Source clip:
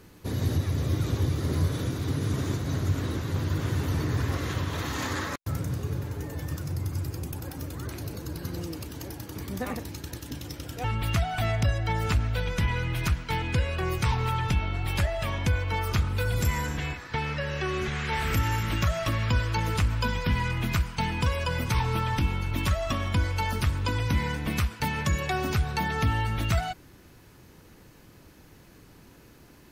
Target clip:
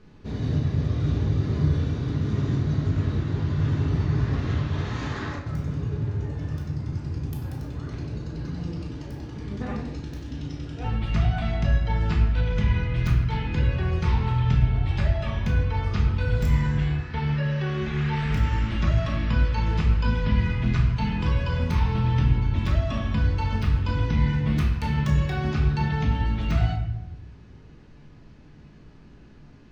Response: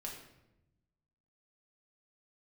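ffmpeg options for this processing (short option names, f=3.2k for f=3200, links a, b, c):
-filter_complex "[0:a]bass=f=250:g=6,treble=f=4k:g=-1,acrossover=split=6000[a][b];[b]acrusher=bits=4:mix=0:aa=0.000001[c];[a][c]amix=inputs=2:normalize=0[d];[1:a]atrim=start_sample=2205[e];[d][e]afir=irnorm=-1:irlink=0"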